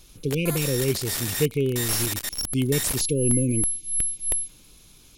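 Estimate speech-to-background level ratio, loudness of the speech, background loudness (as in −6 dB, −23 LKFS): 0.5 dB, −26.0 LKFS, −26.5 LKFS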